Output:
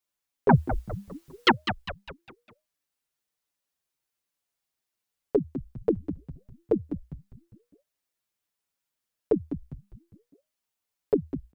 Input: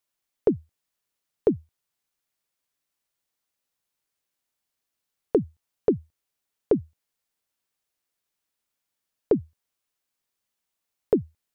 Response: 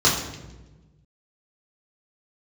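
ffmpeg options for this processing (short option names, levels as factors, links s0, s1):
-filter_complex "[0:a]asettb=1/sr,asplit=3[s0][s1][s2];[s0]atrim=end=0.494[s3];[s1]atrim=start=0.49:end=1.51,asetpts=PTS-STARTPTS,afade=t=in:d=0.004:c=qsin,afade=t=out:st=1.016:d=0.004:c=qsin,aeval=exprs='0.355*sin(PI/2*6.31*val(0)/0.355)':c=same[s4];[s2]atrim=start=1.506[s5];[s3][s4]acrossfade=d=0.004:c1=hsin:c2=qsin[s6];[s6][s5]acrossfade=d=0.004:c1=qsin:c2=hsin,asplit=6[s7][s8][s9][s10][s11][s12];[s8]adelay=202,afreqshift=-140,volume=0.335[s13];[s9]adelay=404,afreqshift=-280,volume=0.151[s14];[s10]adelay=606,afreqshift=-420,volume=0.0676[s15];[s11]adelay=808,afreqshift=-560,volume=0.0305[s16];[s12]adelay=1010,afreqshift=-700,volume=0.0138[s17];[s7][s13][s14][s15][s16][s17]amix=inputs=6:normalize=0,asplit=2[s18][s19];[s19]adelay=6.2,afreqshift=-1.2[s20];[s18][s20]amix=inputs=2:normalize=1"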